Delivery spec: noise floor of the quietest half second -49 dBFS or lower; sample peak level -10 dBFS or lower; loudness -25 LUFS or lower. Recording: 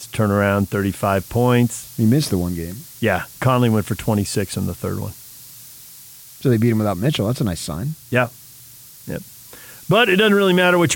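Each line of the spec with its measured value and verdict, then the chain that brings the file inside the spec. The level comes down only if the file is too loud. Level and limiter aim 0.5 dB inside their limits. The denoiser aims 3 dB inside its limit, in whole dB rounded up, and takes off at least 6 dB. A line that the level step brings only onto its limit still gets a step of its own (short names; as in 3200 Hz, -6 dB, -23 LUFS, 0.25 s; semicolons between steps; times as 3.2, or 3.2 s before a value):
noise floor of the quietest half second -42 dBFS: fail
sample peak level -3.5 dBFS: fail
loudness -19.0 LUFS: fail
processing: denoiser 6 dB, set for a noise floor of -42 dBFS; gain -6.5 dB; limiter -10.5 dBFS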